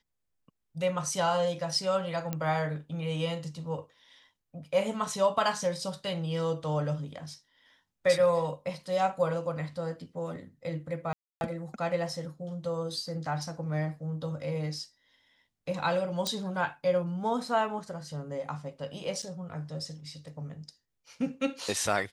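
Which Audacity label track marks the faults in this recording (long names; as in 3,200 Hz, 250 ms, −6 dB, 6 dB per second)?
2.330000	2.330000	click −18 dBFS
11.130000	11.410000	drop-out 281 ms
16.270000	16.270000	click −16 dBFS
19.220000	19.230000	drop-out 5.6 ms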